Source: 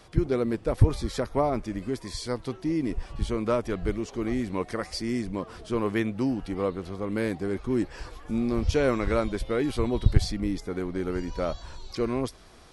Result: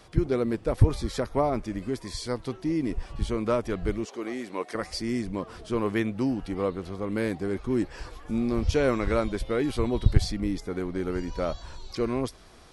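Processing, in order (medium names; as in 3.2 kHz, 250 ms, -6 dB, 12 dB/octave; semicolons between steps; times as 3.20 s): 4.05–4.75 s: high-pass 360 Hz 12 dB/octave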